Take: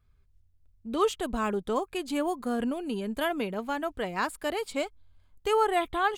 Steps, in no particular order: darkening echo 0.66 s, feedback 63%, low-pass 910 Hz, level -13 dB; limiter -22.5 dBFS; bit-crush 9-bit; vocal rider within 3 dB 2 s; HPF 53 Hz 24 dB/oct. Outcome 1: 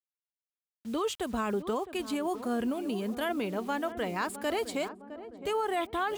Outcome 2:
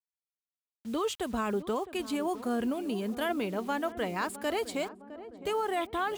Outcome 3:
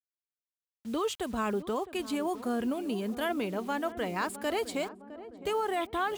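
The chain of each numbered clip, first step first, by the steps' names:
HPF > bit-crush > darkening echo > limiter > vocal rider; HPF > limiter > bit-crush > vocal rider > darkening echo; limiter > HPF > bit-crush > darkening echo > vocal rider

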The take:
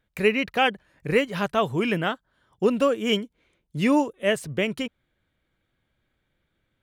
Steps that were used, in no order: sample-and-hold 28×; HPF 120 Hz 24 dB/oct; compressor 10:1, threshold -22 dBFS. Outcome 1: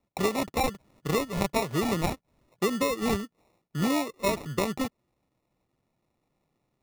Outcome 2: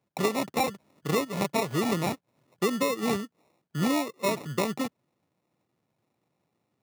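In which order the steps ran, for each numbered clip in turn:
compressor > HPF > sample-and-hold; sample-and-hold > compressor > HPF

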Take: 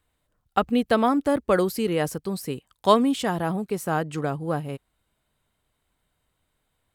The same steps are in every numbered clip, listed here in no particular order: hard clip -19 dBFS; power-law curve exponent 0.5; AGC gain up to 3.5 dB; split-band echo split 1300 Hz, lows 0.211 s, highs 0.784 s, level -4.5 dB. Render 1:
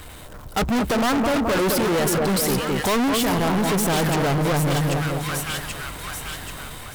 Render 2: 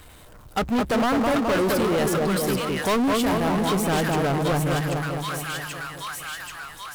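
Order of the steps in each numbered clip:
power-law curve > split-band echo > AGC > hard clip; split-band echo > AGC > hard clip > power-law curve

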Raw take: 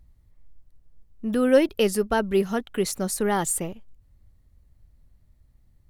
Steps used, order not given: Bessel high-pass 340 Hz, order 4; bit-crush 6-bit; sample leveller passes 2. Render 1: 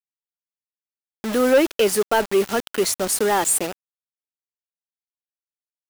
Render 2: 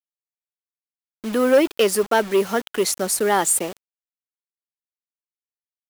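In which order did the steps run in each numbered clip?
Bessel high-pass > bit-crush > sample leveller; sample leveller > Bessel high-pass > bit-crush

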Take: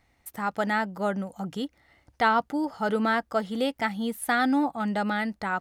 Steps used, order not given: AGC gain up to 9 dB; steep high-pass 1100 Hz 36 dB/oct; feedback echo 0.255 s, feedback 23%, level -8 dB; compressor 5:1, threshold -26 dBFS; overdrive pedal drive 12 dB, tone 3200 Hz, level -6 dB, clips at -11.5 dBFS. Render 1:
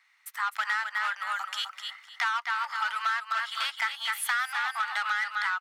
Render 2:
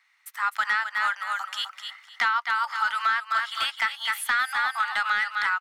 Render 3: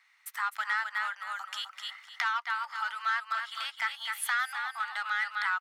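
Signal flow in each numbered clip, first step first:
AGC > feedback echo > overdrive pedal > steep high-pass > compressor; steep high-pass > AGC > feedback echo > compressor > overdrive pedal; feedback echo > overdrive pedal > AGC > compressor > steep high-pass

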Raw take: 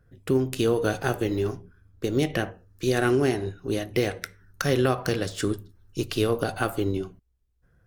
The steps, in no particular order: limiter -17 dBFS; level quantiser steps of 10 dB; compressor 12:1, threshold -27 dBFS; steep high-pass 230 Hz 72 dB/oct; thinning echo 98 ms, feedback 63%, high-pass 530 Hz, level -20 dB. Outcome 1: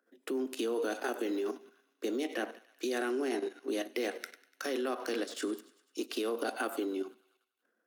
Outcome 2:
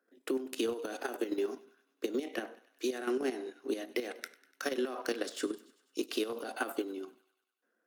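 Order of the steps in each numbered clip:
thinning echo > limiter > level quantiser > compressor > steep high-pass; steep high-pass > limiter > compressor > level quantiser > thinning echo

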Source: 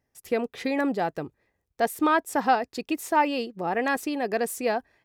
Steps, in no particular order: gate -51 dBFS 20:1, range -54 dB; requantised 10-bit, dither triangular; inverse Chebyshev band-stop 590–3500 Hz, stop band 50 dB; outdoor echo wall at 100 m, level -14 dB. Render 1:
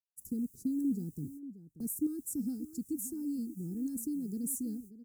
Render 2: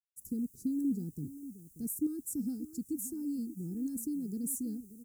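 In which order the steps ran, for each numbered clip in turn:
requantised > inverse Chebyshev band-stop > gate > outdoor echo; requantised > outdoor echo > gate > inverse Chebyshev band-stop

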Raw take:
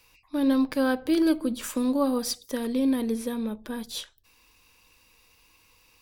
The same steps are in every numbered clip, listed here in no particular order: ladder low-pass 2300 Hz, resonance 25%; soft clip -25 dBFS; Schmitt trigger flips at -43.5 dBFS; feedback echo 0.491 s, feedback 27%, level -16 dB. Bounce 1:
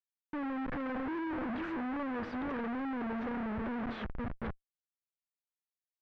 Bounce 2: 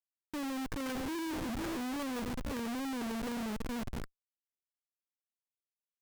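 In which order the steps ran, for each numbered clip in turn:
feedback echo > Schmitt trigger > soft clip > ladder low-pass; ladder low-pass > soft clip > feedback echo > Schmitt trigger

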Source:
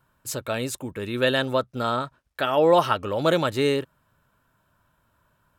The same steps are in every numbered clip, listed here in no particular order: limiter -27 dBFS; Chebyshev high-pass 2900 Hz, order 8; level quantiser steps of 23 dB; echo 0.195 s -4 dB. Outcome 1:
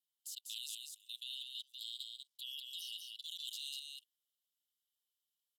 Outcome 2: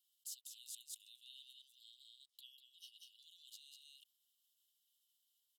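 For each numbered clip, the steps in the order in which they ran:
Chebyshev high-pass > limiter > level quantiser > echo; limiter > echo > level quantiser > Chebyshev high-pass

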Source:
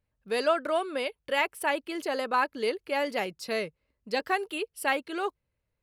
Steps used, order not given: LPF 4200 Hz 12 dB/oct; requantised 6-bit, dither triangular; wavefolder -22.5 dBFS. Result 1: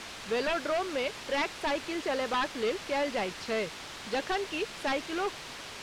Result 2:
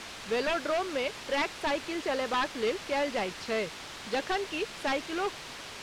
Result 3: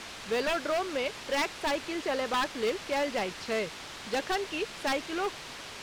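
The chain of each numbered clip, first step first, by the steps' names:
requantised > wavefolder > LPF; wavefolder > requantised > LPF; requantised > LPF > wavefolder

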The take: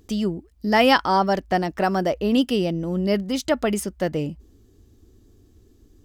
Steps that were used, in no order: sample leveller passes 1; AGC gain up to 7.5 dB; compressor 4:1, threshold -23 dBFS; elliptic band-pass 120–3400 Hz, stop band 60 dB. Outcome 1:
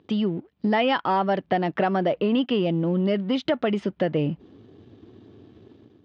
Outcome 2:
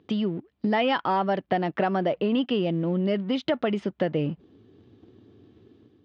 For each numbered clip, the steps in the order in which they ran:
AGC > compressor > sample leveller > elliptic band-pass; sample leveller > AGC > compressor > elliptic band-pass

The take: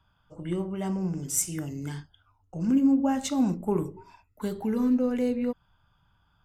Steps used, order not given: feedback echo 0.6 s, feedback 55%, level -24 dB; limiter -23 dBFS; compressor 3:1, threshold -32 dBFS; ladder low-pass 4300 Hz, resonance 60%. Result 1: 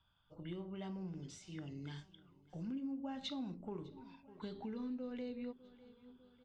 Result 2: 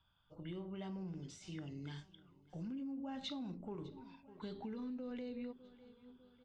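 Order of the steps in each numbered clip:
feedback echo > compressor > limiter > ladder low-pass; feedback echo > limiter > compressor > ladder low-pass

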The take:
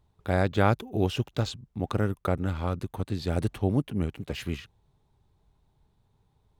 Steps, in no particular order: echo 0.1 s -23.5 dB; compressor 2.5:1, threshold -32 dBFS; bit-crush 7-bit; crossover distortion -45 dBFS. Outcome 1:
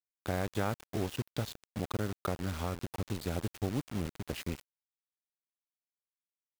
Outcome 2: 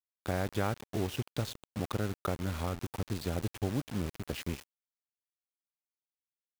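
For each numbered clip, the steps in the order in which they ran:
compressor > crossover distortion > echo > bit-crush; echo > crossover distortion > compressor > bit-crush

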